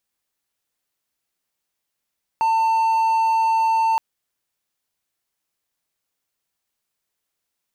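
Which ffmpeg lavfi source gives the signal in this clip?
ffmpeg -f lavfi -i "aevalsrc='0.211*(1-4*abs(mod(897*t+0.25,1)-0.5))':duration=1.57:sample_rate=44100" out.wav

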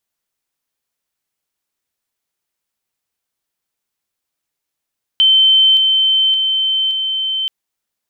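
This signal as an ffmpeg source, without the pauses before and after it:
ffmpeg -f lavfi -i "aevalsrc='pow(10,(-7-3*floor(t/0.57))/20)*sin(2*PI*3090*t)':duration=2.28:sample_rate=44100" out.wav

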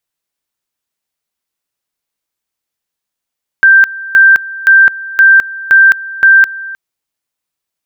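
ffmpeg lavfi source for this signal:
ffmpeg -f lavfi -i "aevalsrc='pow(10,(-1.5-19*gte(mod(t,0.52),0.21))/20)*sin(2*PI*1570*t)':duration=3.12:sample_rate=44100" out.wav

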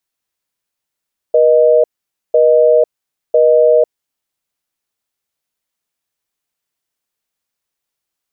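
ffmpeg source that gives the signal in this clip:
ffmpeg -f lavfi -i "aevalsrc='0.355*(sin(2*PI*480*t)+sin(2*PI*620*t))*clip(min(mod(t,1),0.5-mod(t,1))/0.005,0,1)':duration=2.84:sample_rate=44100" out.wav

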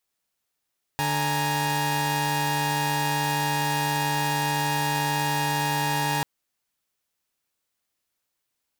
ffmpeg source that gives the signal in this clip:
ffmpeg -f lavfi -i "aevalsrc='0.0562*((2*mod(146.83*t,1)-1)+(2*mod(830.61*t,1)-1)+(2*mod(932.33*t,1)-1))':duration=5.24:sample_rate=44100" out.wav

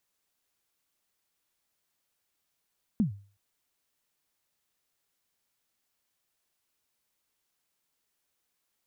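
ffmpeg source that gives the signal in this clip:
ffmpeg -f lavfi -i "aevalsrc='0.119*pow(10,-3*t/0.4)*sin(2*PI*(240*0.116/log(100/240)*(exp(log(100/240)*min(t,0.116)/0.116)-1)+100*max(t-0.116,0)))':duration=0.37:sample_rate=44100" out.wav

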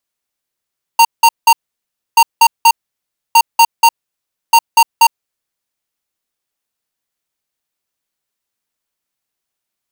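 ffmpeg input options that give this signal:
ffmpeg -f lavfi -i "aevalsrc='0.501*(2*lt(mod(923*t,1),0.5)-1)*clip(min(mod(mod(t,1.18),0.24),0.06-mod(mod(t,1.18),0.24))/0.005,0,1)*lt(mod(t,1.18),0.72)':duration=4.72:sample_rate=44100" out.wav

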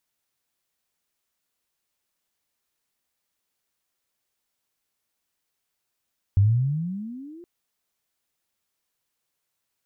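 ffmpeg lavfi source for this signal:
ffmpeg -f lavfi -i "aevalsrc='pow(10,(-13-28*t/1.07)/20)*sin(2*PI*94.6*1.07/(23*log(2)/12)*(exp(23*log(2)/12*t/1.07)-1))':duration=1.07:sample_rate=44100" out.wav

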